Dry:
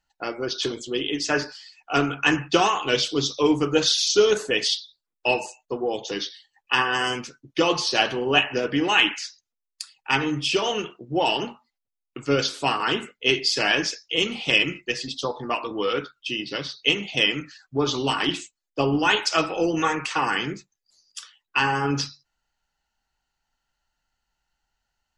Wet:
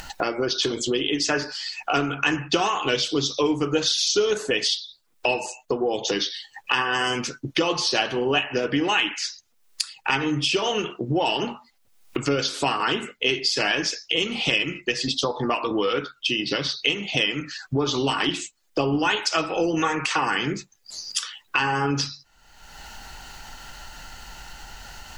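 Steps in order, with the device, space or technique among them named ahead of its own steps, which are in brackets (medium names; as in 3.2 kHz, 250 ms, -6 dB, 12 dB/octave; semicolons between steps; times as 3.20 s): upward and downward compression (upward compressor, threshold -22 dBFS; compression 3:1, threshold -28 dBFS, peak gain reduction 11.5 dB); trim +6.5 dB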